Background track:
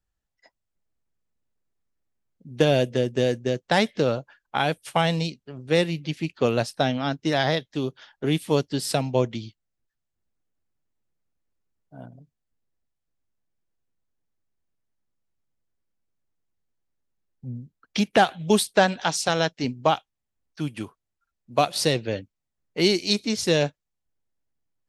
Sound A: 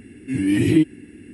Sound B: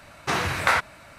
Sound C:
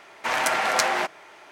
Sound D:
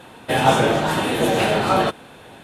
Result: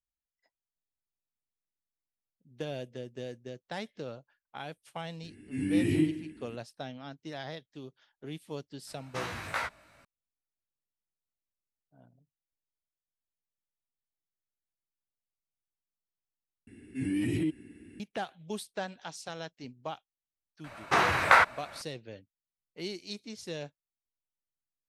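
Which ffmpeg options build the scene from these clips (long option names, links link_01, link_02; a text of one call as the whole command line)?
ffmpeg -i bed.wav -i cue0.wav -i cue1.wav -filter_complex "[1:a]asplit=2[link_01][link_02];[2:a]asplit=2[link_03][link_04];[0:a]volume=-18dB[link_05];[link_01]aecho=1:1:20|50|95|162.5|263.8:0.631|0.398|0.251|0.158|0.1[link_06];[link_03]flanger=delay=16:depth=3.7:speed=2.6[link_07];[link_02]alimiter=limit=-13.5dB:level=0:latency=1:release=24[link_08];[link_04]equalizer=frequency=970:width=0.32:gain=9.5[link_09];[link_05]asplit=2[link_10][link_11];[link_10]atrim=end=16.674[link_12];[link_08]atrim=end=1.33,asetpts=PTS-STARTPTS,volume=-9.5dB[link_13];[link_11]atrim=start=17.996[link_14];[link_06]atrim=end=1.33,asetpts=PTS-STARTPTS,volume=-12dB,afade=type=in:duration=0.004:curve=hsin,afade=type=out:start_time=1.326:duration=0.004:curve=hsin,adelay=5230[link_15];[link_07]atrim=end=1.18,asetpts=PTS-STARTPTS,volume=-9.5dB,afade=type=in:duration=0.004:curve=hsin,afade=type=out:start_time=1.176:duration=0.004:curve=hsin,adelay=8870[link_16];[link_09]atrim=end=1.18,asetpts=PTS-STARTPTS,volume=-7.5dB,afade=type=in:duration=0.004:curve=hsin,afade=type=out:start_time=1.176:duration=0.004:curve=hsin,adelay=20640[link_17];[link_12][link_13]acrossfade=duration=0.004:curve1=hsin:curve2=hsin[link_18];[link_18][link_14]acrossfade=duration=0.004:curve1=hsin:curve2=hsin[link_19];[link_19][link_15][link_16][link_17]amix=inputs=4:normalize=0" out.wav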